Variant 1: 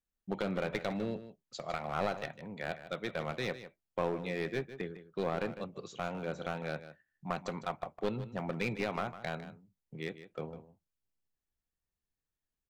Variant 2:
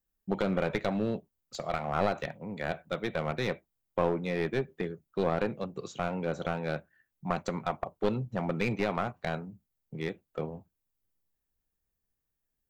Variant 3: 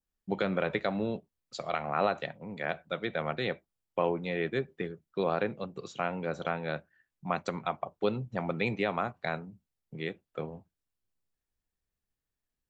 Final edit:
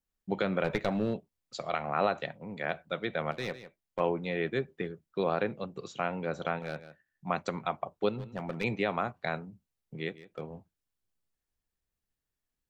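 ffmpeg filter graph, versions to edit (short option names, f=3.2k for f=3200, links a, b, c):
-filter_complex "[0:a]asplit=4[a][b][c][d];[2:a]asplit=6[e][f][g][h][i][j];[e]atrim=end=0.642[k];[1:a]atrim=start=0.638:end=1.142[l];[f]atrim=start=1.138:end=3.312[m];[a]atrim=start=3.308:end=4.002[n];[g]atrim=start=3.998:end=6.592[o];[b]atrim=start=6.588:end=7.272[p];[h]atrim=start=7.268:end=8.092[q];[c]atrim=start=8.088:end=8.642[r];[i]atrim=start=8.638:end=10.102[s];[d]atrim=start=10.098:end=10.502[t];[j]atrim=start=10.498[u];[k][l]acrossfade=d=0.004:c1=hsin:c2=hsin[v];[v][m]acrossfade=d=0.004:c1=hsin:c2=hsin[w];[w][n]acrossfade=d=0.004:c1=hsin:c2=hsin[x];[x][o]acrossfade=d=0.004:c1=hsin:c2=hsin[y];[y][p]acrossfade=d=0.004:c1=hsin:c2=hsin[z];[z][q]acrossfade=d=0.004:c1=hsin:c2=hsin[aa];[aa][r]acrossfade=d=0.004:c1=hsin:c2=hsin[ab];[ab][s]acrossfade=d=0.004:c1=hsin:c2=hsin[ac];[ac][t]acrossfade=d=0.004:c1=hsin:c2=hsin[ad];[ad][u]acrossfade=d=0.004:c1=hsin:c2=hsin"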